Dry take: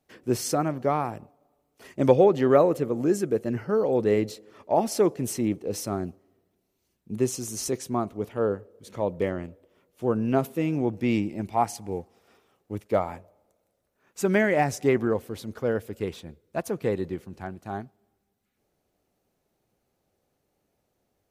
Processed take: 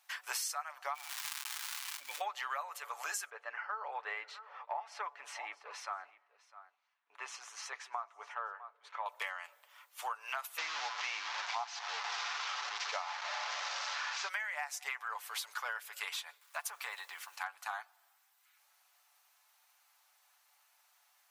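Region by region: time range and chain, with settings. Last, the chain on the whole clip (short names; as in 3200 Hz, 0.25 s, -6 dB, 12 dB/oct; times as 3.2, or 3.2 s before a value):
0.93–2.2 vocal tract filter i + crackle 370/s -40 dBFS + fast leveller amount 50%
3.3–9.06 LPF 1500 Hz + bell 880 Hz -5.5 dB 2 oct + echo 0.653 s -20.5 dB
10.58–14.29 delta modulation 32 kbps, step -28.5 dBFS + bell 220 Hz +14 dB 2.4 oct
16.41–17.36 compressor 2:1, threshold -38 dBFS + requantised 12-bit, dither none
whole clip: steep high-pass 910 Hz 36 dB/oct; comb 6.9 ms, depth 44%; compressor 10:1, threshold -47 dBFS; gain +11 dB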